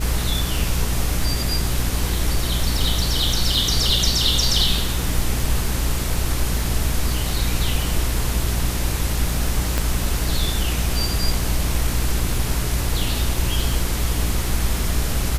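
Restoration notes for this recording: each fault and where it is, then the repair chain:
surface crackle 24 per second −26 dBFS
mains hum 60 Hz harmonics 7 −24 dBFS
0:09.78: click −6 dBFS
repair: click removal
hum removal 60 Hz, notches 7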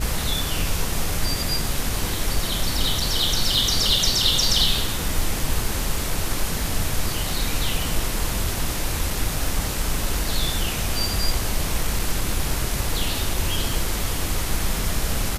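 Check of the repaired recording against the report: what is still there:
0:09.78: click

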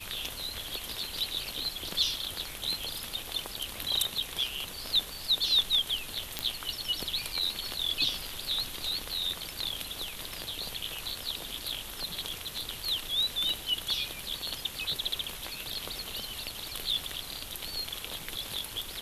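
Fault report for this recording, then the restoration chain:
0:06.39: click −12 dBFS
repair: click removal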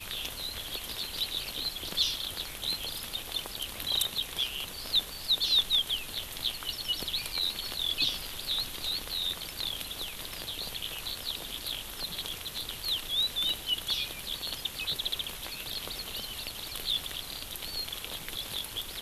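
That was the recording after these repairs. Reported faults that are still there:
none of them is left

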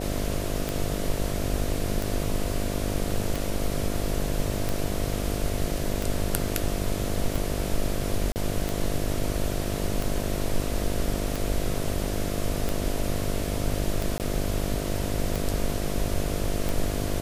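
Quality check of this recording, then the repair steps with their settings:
mains buzz 50 Hz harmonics 14 −31 dBFS
scratch tick 45 rpm
0:08.32–0:08.36: drop-out 39 ms
0:14.18–0:14.20: drop-out 18 ms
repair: click removal
hum removal 50 Hz, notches 14
repair the gap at 0:08.32, 39 ms
repair the gap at 0:14.18, 18 ms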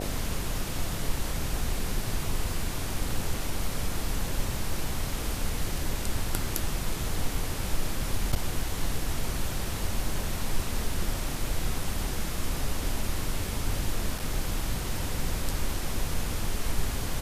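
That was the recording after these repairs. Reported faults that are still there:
none of them is left

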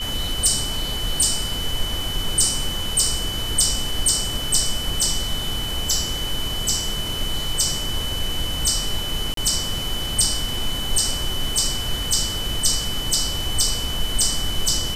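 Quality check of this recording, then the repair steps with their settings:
whistle 3,000 Hz −27 dBFS
0:09.34–0:09.37: drop-out 33 ms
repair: notch filter 3,000 Hz, Q 30
repair the gap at 0:09.34, 33 ms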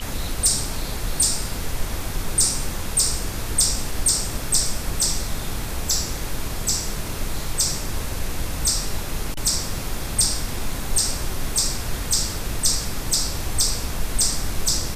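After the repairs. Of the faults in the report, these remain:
none of them is left

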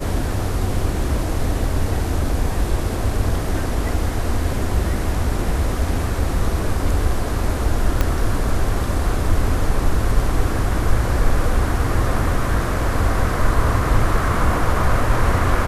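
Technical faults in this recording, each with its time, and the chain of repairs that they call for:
0:08.01: click −5 dBFS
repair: click removal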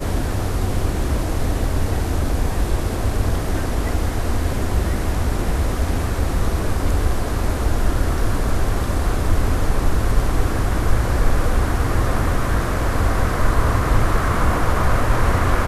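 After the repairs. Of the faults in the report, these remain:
0:08.01: click

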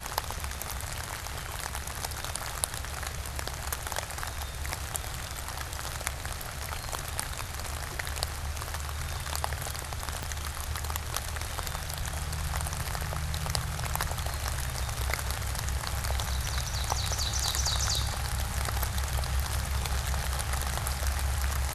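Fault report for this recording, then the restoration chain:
0:10.23: click −17 dBFS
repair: click removal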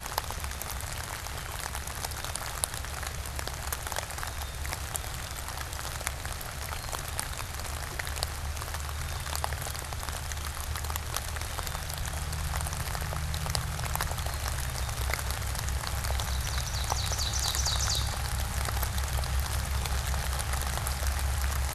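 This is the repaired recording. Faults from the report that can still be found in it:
0:10.23: click

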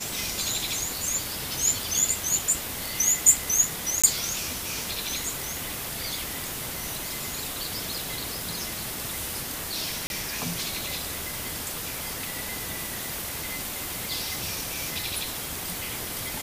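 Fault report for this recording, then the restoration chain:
0:04.02–0:04.04: drop-out 16 ms
0:10.07–0:10.10: drop-out 31 ms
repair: repair the gap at 0:04.02, 16 ms
repair the gap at 0:10.07, 31 ms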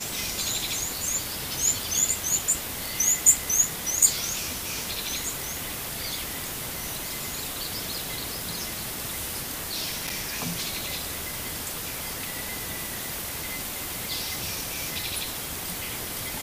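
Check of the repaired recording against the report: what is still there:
none of them is left

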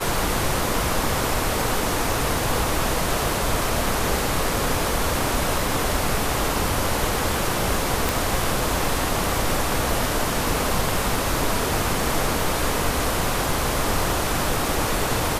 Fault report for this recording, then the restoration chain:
0:08.09: click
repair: click removal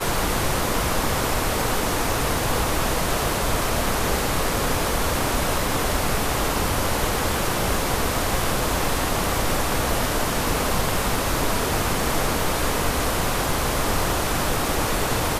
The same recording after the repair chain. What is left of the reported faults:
none of them is left

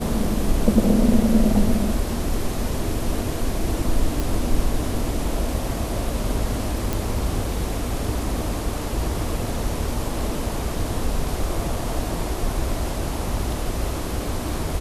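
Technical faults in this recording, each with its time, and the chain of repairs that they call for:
0:04.20: click
0:06.93: click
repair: click removal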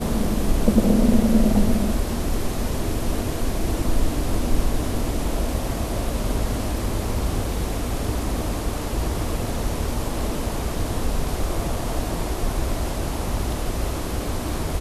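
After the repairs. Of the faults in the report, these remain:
none of them is left

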